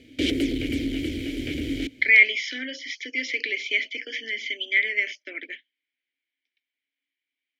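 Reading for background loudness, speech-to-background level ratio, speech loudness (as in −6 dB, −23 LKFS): −28.0 LKFS, 5.5 dB, −22.5 LKFS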